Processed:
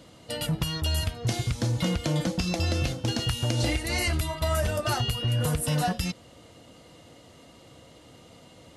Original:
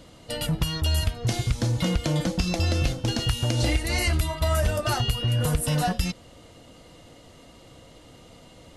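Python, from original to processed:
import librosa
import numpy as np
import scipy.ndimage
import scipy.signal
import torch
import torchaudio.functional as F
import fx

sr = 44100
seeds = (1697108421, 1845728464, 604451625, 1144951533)

y = scipy.signal.sosfilt(scipy.signal.butter(2, 71.0, 'highpass', fs=sr, output='sos'), x)
y = F.gain(torch.from_numpy(y), -1.5).numpy()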